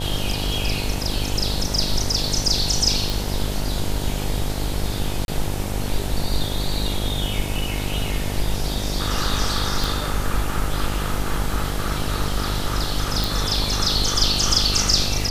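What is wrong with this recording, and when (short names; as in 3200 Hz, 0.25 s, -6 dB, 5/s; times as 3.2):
buzz 50 Hz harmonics 19 -27 dBFS
3.1 pop
5.25–5.28 gap 31 ms
9.84 pop
13.24 pop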